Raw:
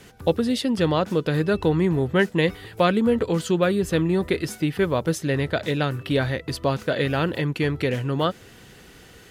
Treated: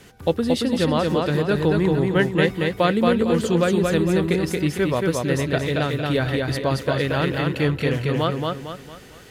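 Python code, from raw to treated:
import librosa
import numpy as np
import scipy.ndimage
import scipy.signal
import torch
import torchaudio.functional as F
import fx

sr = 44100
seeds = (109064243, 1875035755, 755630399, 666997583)

y = fx.echo_feedback(x, sr, ms=227, feedback_pct=39, wet_db=-3)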